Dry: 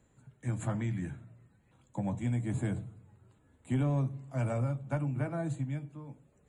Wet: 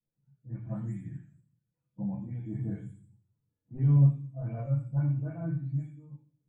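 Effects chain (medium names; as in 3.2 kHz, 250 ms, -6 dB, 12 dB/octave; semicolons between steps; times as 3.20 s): delay that grows with frequency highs late, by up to 313 ms; vibrato 1.5 Hz 5.2 cents; feedback echo behind a high-pass 81 ms, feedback 42%, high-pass 1.5 kHz, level -5 dB; reverberation RT60 0.55 s, pre-delay 4 ms, DRR -1.5 dB; spectral contrast expander 1.5:1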